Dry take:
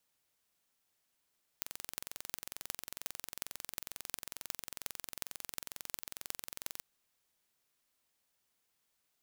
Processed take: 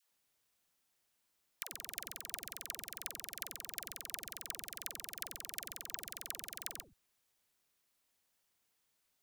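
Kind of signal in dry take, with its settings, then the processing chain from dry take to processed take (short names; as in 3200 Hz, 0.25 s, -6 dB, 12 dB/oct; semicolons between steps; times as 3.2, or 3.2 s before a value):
pulse train 22.2/s, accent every 8, -8.5 dBFS 5.19 s
dispersion lows, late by 0.131 s, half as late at 430 Hz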